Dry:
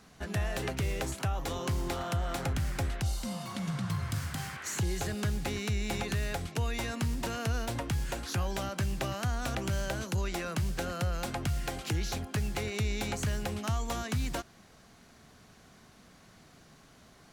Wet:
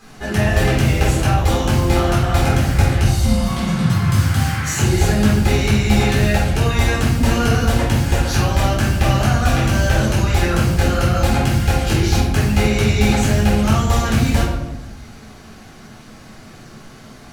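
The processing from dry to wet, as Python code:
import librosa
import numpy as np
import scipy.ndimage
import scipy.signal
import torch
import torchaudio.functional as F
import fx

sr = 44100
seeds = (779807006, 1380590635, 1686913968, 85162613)

y = fx.room_shoebox(x, sr, seeds[0], volume_m3=300.0, walls='mixed', distance_m=3.9)
y = y * 10.0 ** (5.0 / 20.0)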